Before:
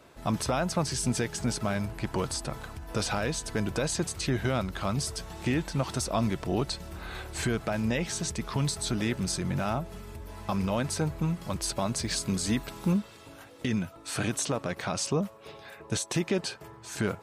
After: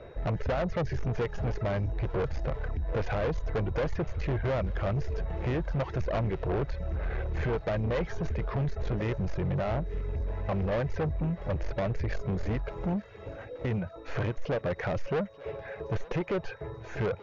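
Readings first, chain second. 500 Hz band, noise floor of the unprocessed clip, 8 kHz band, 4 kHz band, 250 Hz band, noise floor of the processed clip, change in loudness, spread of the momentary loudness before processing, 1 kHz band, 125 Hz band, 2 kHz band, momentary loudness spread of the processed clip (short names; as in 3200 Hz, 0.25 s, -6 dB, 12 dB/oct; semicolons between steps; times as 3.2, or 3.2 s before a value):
+2.0 dB, -50 dBFS, under -25 dB, -13.5 dB, -4.5 dB, -46 dBFS, -1.5 dB, 9 LU, -2.5 dB, +1.5 dB, -3.0 dB, 5 LU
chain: tracing distortion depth 0.027 ms; reverb removal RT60 0.5 s; whine 3800 Hz -53 dBFS; tilt -3.5 dB/oct; in parallel at -2 dB: compressor, threshold -28 dBFS, peak gain reduction 13.5 dB; on the sum: graphic EQ 250/500/1000/2000/4000/8000 Hz -11/+12/-4/+9/-9/-10 dB; soft clip -22.5 dBFS, distortion -8 dB; thinning echo 0.886 s, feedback 46%, level -19 dB; gain -3 dB; MP2 96 kbps 22050 Hz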